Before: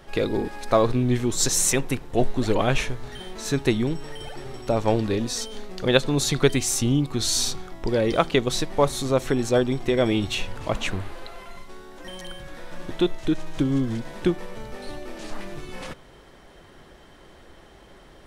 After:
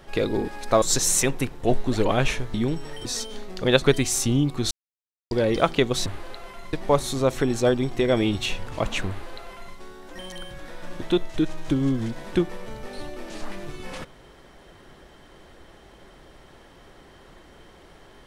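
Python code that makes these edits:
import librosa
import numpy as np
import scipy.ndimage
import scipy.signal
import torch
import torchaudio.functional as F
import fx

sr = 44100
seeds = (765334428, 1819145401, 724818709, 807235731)

y = fx.edit(x, sr, fx.cut(start_s=0.82, length_s=0.5),
    fx.cut(start_s=3.04, length_s=0.69),
    fx.cut(start_s=4.24, length_s=1.02),
    fx.cut(start_s=6.03, length_s=0.35),
    fx.silence(start_s=7.27, length_s=0.6),
    fx.duplicate(start_s=10.98, length_s=0.67, to_s=8.62), tone=tone)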